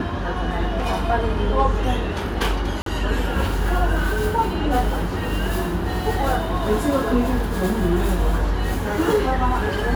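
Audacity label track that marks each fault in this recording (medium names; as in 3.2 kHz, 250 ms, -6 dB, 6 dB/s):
2.820000	2.860000	dropout 43 ms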